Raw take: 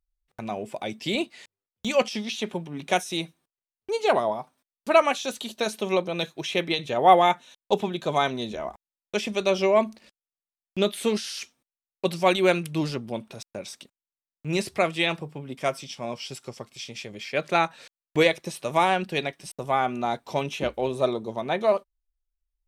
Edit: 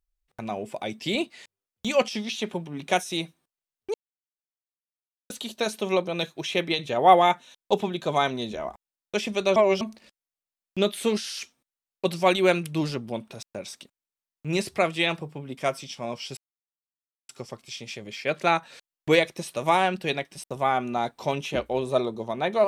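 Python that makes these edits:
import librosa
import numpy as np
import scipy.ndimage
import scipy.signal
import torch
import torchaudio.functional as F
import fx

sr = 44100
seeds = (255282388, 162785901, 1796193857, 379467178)

y = fx.edit(x, sr, fx.silence(start_s=3.94, length_s=1.36),
    fx.reverse_span(start_s=9.56, length_s=0.25),
    fx.insert_silence(at_s=16.37, length_s=0.92), tone=tone)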